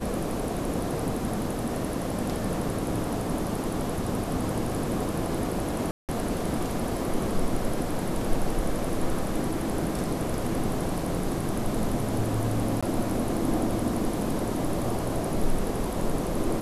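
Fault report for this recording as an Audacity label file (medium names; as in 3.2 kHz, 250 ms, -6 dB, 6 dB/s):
5.910000	6.090000	dropout 178 ms
12.810000	12.830000	dropout 16 ms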